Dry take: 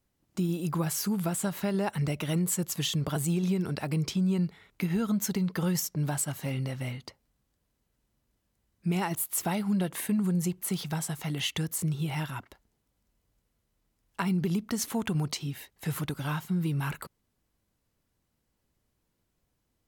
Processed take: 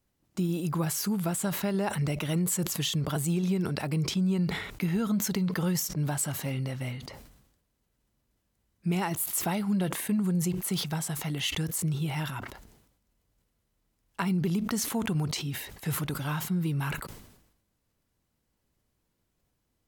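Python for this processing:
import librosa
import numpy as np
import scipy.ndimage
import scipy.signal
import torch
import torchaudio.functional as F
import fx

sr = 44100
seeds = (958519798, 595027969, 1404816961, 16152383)

y = fx.sustainer(x, sr, db_per_s=64.0)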